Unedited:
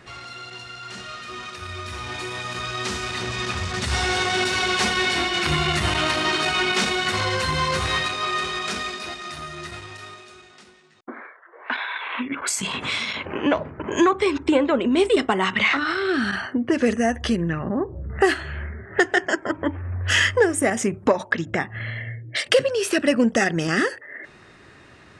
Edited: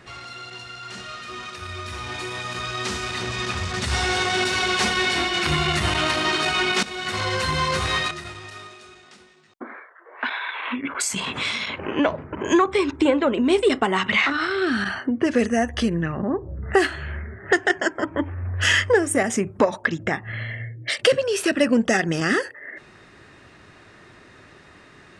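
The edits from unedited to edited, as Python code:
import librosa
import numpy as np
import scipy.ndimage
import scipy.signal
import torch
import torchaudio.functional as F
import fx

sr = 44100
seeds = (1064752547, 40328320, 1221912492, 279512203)

y = fx.edit(x, sr, fx.fade_in_from(start_s=6.83, length_s=0.7, curve='qsin', floor_db=-15.0),
    fx.cut(start_s=8.11, length_s=1.47), tone=tone)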